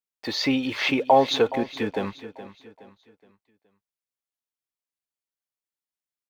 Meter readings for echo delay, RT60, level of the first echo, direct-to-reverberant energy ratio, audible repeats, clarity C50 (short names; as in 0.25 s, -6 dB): 0.42 s, none, -14.5 dB, none, 3, none